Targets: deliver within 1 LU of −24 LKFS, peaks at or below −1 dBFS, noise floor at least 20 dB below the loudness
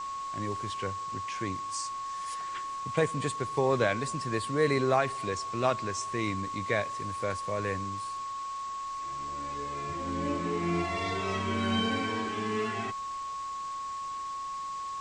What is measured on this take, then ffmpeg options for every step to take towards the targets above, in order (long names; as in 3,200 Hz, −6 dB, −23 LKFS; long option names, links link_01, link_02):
interfering tone 1,100 Hz; level of the tone −34 dBFS; background noise floor −37 dBFS; target noise floor −52 dBFS; integrated loudness −32.0 LKFS; sample peak −11.5 dBFS; target loudness −24.0 LKFS
→ -af "bandreject=frequency=1100:width=30"
-af "afftdn=noise_reduction=15:noise_floor=-37"
-af "volume=8dB"